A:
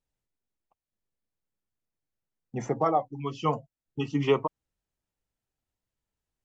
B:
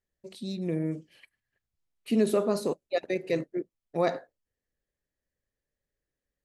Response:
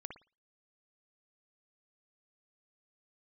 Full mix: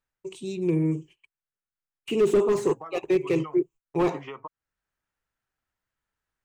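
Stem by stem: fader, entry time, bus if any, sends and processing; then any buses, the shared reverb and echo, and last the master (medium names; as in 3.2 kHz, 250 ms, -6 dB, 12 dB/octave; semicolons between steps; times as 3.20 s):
-2.0 dB, 0.00 s, no send, peaking EQ 1.5 kHz +13.5 dB 1.4 oct; compression 6:1, threshold -25 dBFS, peak gain reduction 11.5 dB; auto duck -11 dB, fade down 0.35 s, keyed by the second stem
+2.0 dB, 0.00 s, no send, gate -51 dBFS, range -30 dB; rippled EQ curve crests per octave 0.7, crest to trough 16 dB; slew-rate limiter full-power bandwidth 53 Hz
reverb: none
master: none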